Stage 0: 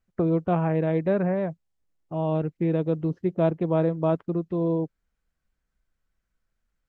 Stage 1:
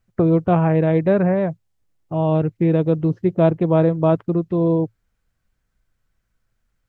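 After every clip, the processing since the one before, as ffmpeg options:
ffmpeg -i in.wav -af "equalizer=frequency=110:width_type=o:width=0.37:gain=11,volume=6.5dB" out.wav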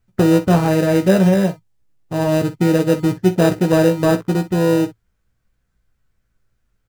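ffmpeg -i in.wav -filter_complex "[0:a]asplit=2[link_01][link_02];[link_02]acrusher=samples=40:mix=1:aa=0.000001,volume=-7dB[link_03];[link_01][link_03]amix=inputs=2:normalize=0,aecho=1:1:16|46|62:0.473|0.168|0.141" out.wav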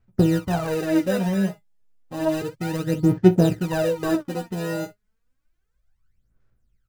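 ffmpeg -i in.wav -af "aphaser=in_gain=1:out_gain=1:delay=4.9:decay=0.72:speed=0.31:type=sinusoidal,volume=-10dB" out.wav

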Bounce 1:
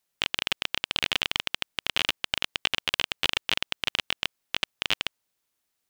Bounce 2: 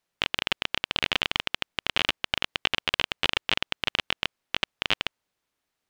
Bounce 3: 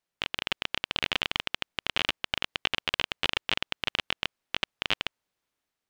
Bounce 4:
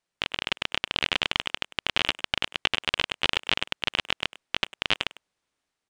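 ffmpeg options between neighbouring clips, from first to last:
ffmpeg -i in.wav -af "lowpass=frequency=2800:poles=1,volume=3.5dB" out.wav
ffmpeg -i in.wav -af "dynaudnorm=framelen=130:gausssize=7:maxgain=5.5dB,volume=-5.5dB" out.wav
ffmpeg -i in.wav -filter_complex "[0:a]aresample=22050,aresample=44100,asplit=2[link_01][link_02];[link_02]adelay=100,highpass=300,lowpass=3400,asoftclip=type=hard:threshold=-16.5dB,volume=-15dB[link_03];[link_01][link_03]amix=inputs=2:normalize=0,volume=3dB" out.wav

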